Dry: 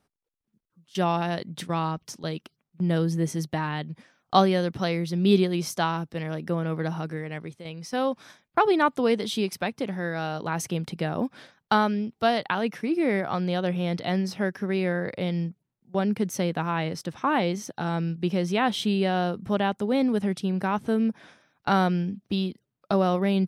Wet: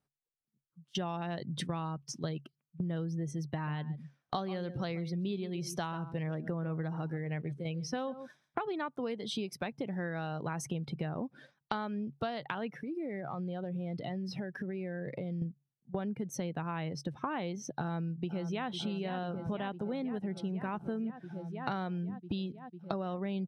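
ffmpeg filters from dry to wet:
-filter_complex "[0:a]asettb=1/sr,asplit=3[s0][s1][s2];[s0]atrim=end=3.514[s3];[s1]atrim=start=3.51:end=8.67,asetpts=PTS-STARTPTS,afade=t=in:d=0.004:c=qsin,afade=t=out:st=5.156:d=0.004:c=qsin,aecho=1:1:137:0.178,atrim=end_sample=227556[s4];[s2]atrim=start=8.666[s5];[s3][s4]acrossfade=d=0.004:c1=hsin:c2=qsin[s6];[s6][s5]acrossfade=d=0.004:c1=qsin:c2=hsin,asettb=1/sr,asplit=3[s7][s8][s9];[s7]atrim=end=12.784[s10];[s8]atrim=start=12.78:end=15.42,asetpts=PTS-STARTPTS,afade=t=in:d=0.004:c=qsin,afade=t=out:st=2.636:d=0.004:c=qsin,acompressor=threshold=0.0178:ratio=12:attack=3.2:release=140:knee=1:detection=peak[s11];[s9]atrim=start=15.416[s12];[s10][s11]acrossfade=d=0.004:c1=hsin:c2=qsin[s13];[s13][s12]acrossfade=d=0.004:c1=qsin:c2=hsin,asplit=2[s14][s15];[s15]afade=t=in:st=17.79:d=0.01,afade=t=out:st=18.69:d=0.01,aecho=0:1:500|1000|1500|2000|2500|3000|3500|4000|4500|5000|5500|6000:0.316228|0.252982|0.202386|0.161909|0.129527|0.103622|0.0828972|0.0663178|0.0530542|0.0424434|0.0339547|0.0271638[s16];[s14][s16]amix=inputs=2:normalize=0,afftdn=nr=16:nf=-41,equalizer=f=140:w=6:g=12,acompressor=threshold=0.0178:ratio=12,volume=1.26"

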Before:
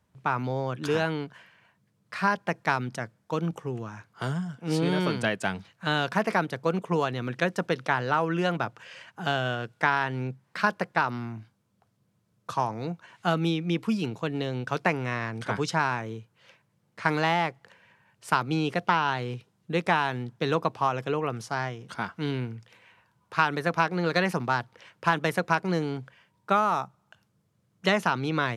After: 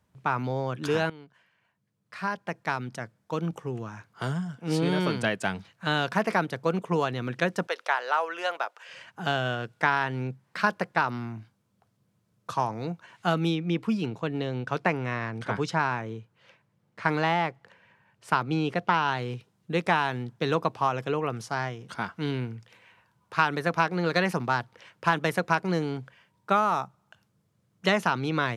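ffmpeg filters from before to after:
-filter_complex "[0:a]asettb=1/sr,asplit=3[s0][s1][s2];[s0]atrim=end=7.674[s3];[s1]atrim=start=7.67:end=8.89,asetpts=PTS-STARTPTS,afade=t=in:d=0.004:c=qsin,afade=t=out:st=1.216:d=0.004:c=qsin,highpass=f=520:w=0.5412,highpass=f=520:w=1.3066[s4];[s2]atrim=start=8.886[s5];[s3][s4]acrossfade=d=0.004:c1=hsin:c2=qsin[s6];[s6][s5]acrossfade=d=0.004:c1=qsin:c2=hsin,asettb=1/sr,asplit=3[s7][s8][s9];[s7]atrim=end=13.554[s10];[s8]atrim=start=13.55:end=18.94,asetpts=PTS-STARTPTS,afade=t=in:d=0.004:c=qsin,afade=t=out:st=5.386:d=0.004:c=qsin,highshelf=f=4800:g=-8[s11];[s9]atrim=start=18.936[s12];[s10][s11]acrossfade=d=0.004:c1=hsin:c2=qsin[s13];[s13][s12]acrossfade=d=0.004:c1=qsin:c2=hsin,asplit=2[s14][s15];[s14]atrim=end=1.1,asetpts=PTS-STARTPTS,afade=t=out:st=1.096:d=0.004:c=hsin:silence=0.149624[s16];[s15]atrim=start=1.1,asetpts=PTS-STARTPTS,afade=t=in:d=2.73:silence=0.149624[s17];[s16][s17]concat=n=2:v=0:a=1"

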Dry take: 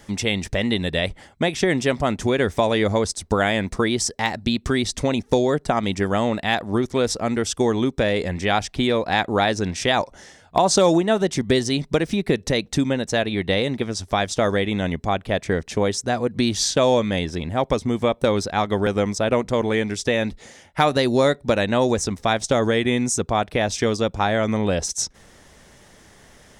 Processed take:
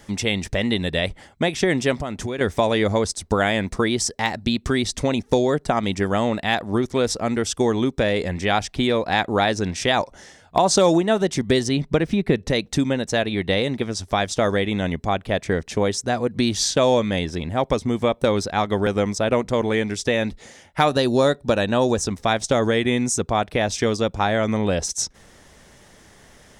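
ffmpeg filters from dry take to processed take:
-filter_complex "[0:a]asettb=1/sr,asplit=3[s0][s1][s2];[s0]atrim=end=2.004[s3];[s1]atrim=start=2:end=2.41,asetpts=PTS-STARTPTS,afade=t=in:d=0.004:c=qsin,afade=t=out:st=0.406:d=0.004:c=qsin,acompressor=threshold=0.0631:ratio=4:attack=3.2:release=140:knee=1:detection=peak[s4];[s2]atrim=start=2.406[s5];[s3][s4]acrossfade=d=0.004:c1=hsin:c2=qsin[s6];[s6][s5]acrossfade=d=0.004:c1=qsin:c2=hsin,asettb=1/sr,asplit=3[s7][s8][s9];[s7]atrim=end=11.684[s10];[s8]atrim=start=11.68:end=12.5,asetpts=PTS-STARTPTS,afade=t=in:d=0.004:c=qsin,afade=t=out:st=0.816:d=0.004:c=qsin,bass=f=250:g=3,treble=f=4000:g=-8[s11];[s9]atrim=start=12.496[s12];[s10][s11]acrossfade=d=0.004:c1=hsin:c2=qsin[s13];[s13][s12]acrossfade=d=0.004:c1=qsin:c2=hsin,asettb=1/sr,asplit=3[s14][s15][s16];[s14]atrim=end=20.884[s17];[s15]atrim=start=20.88:end=22.08,asetpts=PTS-STARTPTS,afade=t=in:d=0.004:c=qsin,afade=t=out:st=1.196:d=0.004:c=qsin,bandreject=f=2100:w=5.1[s18];[s16]atrim=start=22.076[s19];[s17][s18]acrossfade=d=0.004:c1=hsin:c2=qsin[s20];[s20][s19]acrossfade=d=0.004:c1=qsin:c2=hsin"

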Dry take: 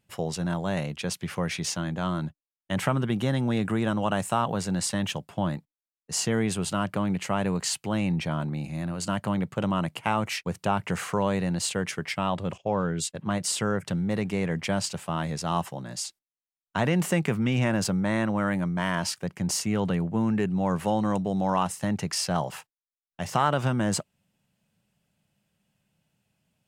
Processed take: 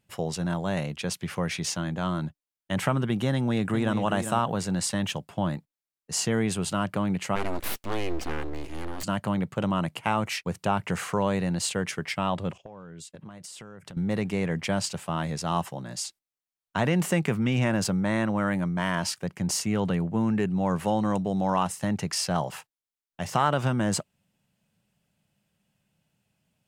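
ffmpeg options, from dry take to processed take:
-filter_complex "[0:a]asplit=2[s0][s1];[s1]afade=t=in:st=3.33:d=0.01,afade=t=out:st=3.99:d=0.01,aecho=0:1:400|800:0.354813|0.0354813[s2];[s0][s2]amix=inputs=2:normalize=0,asplit=3[s3][s4][s5];[s3]afade=t=out:st=7.35:d=0.02[s6];[s4]aeval=exprs='abs(val(0))':c=same,afade=t=in:st=7.35:d=0.02,afade=t=out:st=9.02:d=0.02[s7];[s5]afade=t=in:st=9.02:d=0.02[s8];[s6][s7][s8]amix=inputs=3:normalize=0,asettb=1/sr,asplit=3[s9][s10][s11];[s9]atrim=end=12.514[s12];[s10]atrim=start=12.51:end=13.97,asetpts=PTS-STARTPTS,afade=t=in:d=0.004:c=qsin,afade=t=out:st=1.456:d=0.004:c=qsin,acompressor=threshold=0.0112:ratio=20:attack=3.2:release=140:knee=1:detection=peak[s13];[s11]atrim=start=13.966[s14];[s12][s13]acrossfade=d=0.004:c1=hsin:c2=qsin[s15];[s15][s14]acrossfade=d=0.004:c1=qsin:c2=hsin"

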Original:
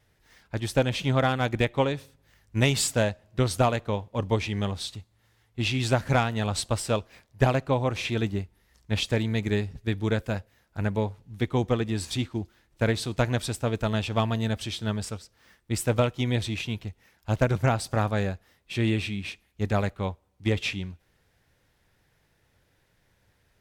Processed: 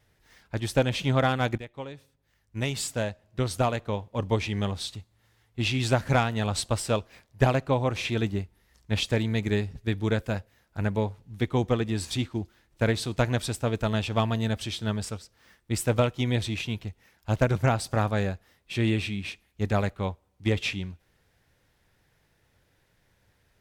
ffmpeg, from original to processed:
-filter_complex "[0:a]asplit=2[s0][s1];[s0]atrim=end=1.58,asetpts=PTS-STARTPTS,afade=t=out:st=1.576:d=0.004:c=hsin:silence=0.133352[s2];[s1]atrim=start=1.58,asetpts=PTS-STARTPTS,afade=t=in:d=2.92:silence=0.133352[s3];[s2][s3]concat=n=2:v=0:a=1"

